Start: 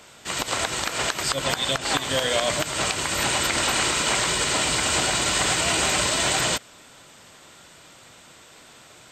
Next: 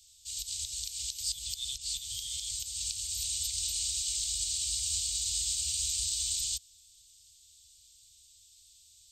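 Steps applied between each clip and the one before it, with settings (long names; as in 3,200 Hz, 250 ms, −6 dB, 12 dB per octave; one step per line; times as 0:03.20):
inverse Chebyshev band-stop filter 180–1,700 Hz, stop band 50 dB
level −5.5 dB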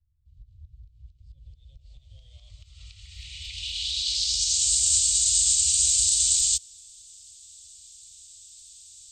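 low-pass filter sweep 220 Hz → 7,800 Hz, 0:00.90–0:04.74
level +5 dB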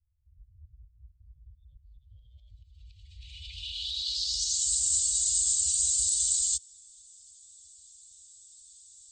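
expanding power law on the bin magnitudes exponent 1.6
level −5 dB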